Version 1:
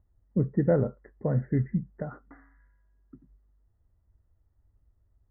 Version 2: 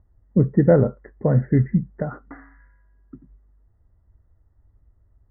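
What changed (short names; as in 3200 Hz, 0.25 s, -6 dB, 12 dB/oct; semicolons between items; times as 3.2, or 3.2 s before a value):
speech +8.5 dB; background +11.5 dB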